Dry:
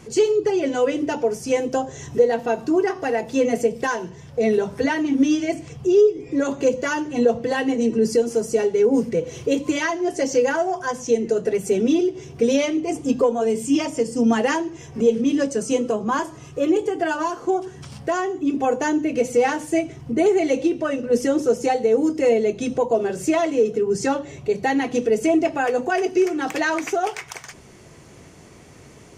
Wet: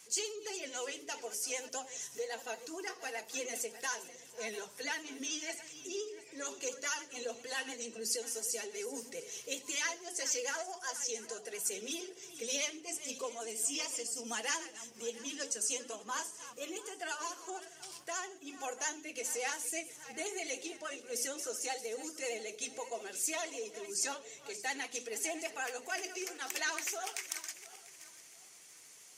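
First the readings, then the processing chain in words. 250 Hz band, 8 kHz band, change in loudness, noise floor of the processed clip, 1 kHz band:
−28.0 dB, −0.5 dB, −17.0 dB, −56 dBFS, −18.0 dB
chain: feedback delay that plays each chunk backwards 347 ms, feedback 52%, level −14 dB
mains-hum notches 60/120/180/240/300/360/420 Hz
pitch vibrato 13 Hz 58 cents
first difference

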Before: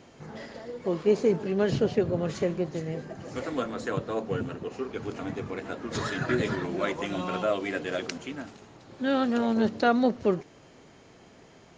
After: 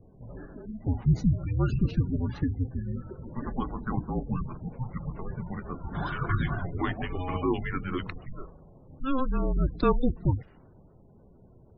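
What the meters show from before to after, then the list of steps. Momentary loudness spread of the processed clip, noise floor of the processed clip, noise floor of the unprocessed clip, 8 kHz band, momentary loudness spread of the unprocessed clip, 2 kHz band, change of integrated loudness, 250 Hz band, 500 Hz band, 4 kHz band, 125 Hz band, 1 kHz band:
14 LU, −55 dBFS, −54 dBFS, can't be measured, 13 LU, −5.0 dB, −1.5 dB, −2.0 dB, −8.5 dB, −8.5 dB, +7.5 dB, −2.5 dB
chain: low-pass that shuts in the quiet parts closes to 840 Hz, open at −20.5 dBFS
frequency shifter −270 Hz
gate on every frequency bin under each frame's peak −25 dB strong

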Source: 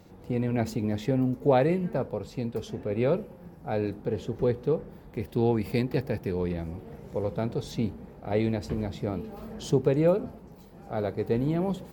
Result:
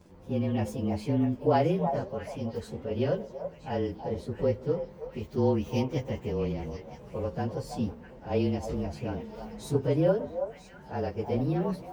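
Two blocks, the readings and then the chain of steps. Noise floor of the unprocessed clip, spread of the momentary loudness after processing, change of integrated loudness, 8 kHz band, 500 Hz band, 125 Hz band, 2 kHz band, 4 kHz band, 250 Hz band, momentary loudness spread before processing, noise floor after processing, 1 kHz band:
−49 dBFS, 13 LU, −2.0 dB, can't be measured, −2.0 dB, −1.5 dB, −3.5 dB, −1.5 dB, −1.5 dB, 13 LU, −50 dBFS, +0.5 dB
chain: partials spread apart or drawn together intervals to 109%
echo through a band-pass that steps 326 ms, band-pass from 750 Hz, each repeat 1.4 octaves, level −4.5 dB

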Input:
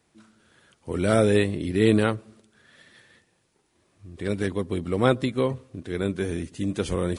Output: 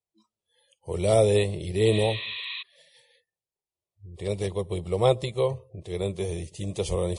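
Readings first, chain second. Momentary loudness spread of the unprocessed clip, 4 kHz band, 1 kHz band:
14 LU, +3.0 dB, −1.5 dB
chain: phaser with its sweep stopped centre 630 Hz, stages 4
healed spectral selection 0:01.95–0:02.59, 990–4,700 Hz before
noise reduction from a noise print of the clip's start 28 dB
level +2.5 dB

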